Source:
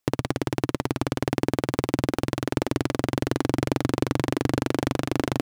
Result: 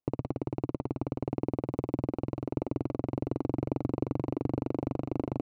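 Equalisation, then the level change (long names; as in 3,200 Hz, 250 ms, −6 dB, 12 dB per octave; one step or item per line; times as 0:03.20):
moving average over 26 samples
−6.0 dB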